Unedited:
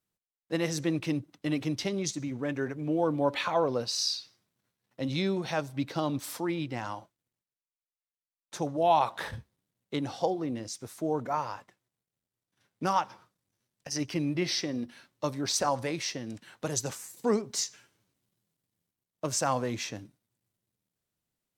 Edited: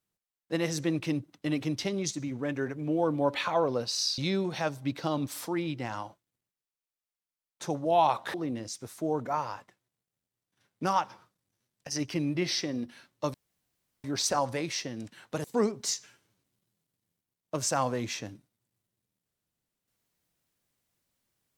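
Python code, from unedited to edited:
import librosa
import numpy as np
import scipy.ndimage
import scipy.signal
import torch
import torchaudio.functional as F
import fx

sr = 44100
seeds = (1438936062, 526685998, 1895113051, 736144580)

y = fx.edit(x, sr, fx.cut(start_s=4.18, length_s=0.92),
    fx.cut(start_s=9.26, length_s=1.08),
    fx.insert_room_tone(at_s=15.34, length_s=0.7),
    fx.cut(start_s=16.74, length_s=0.4), tone=tone)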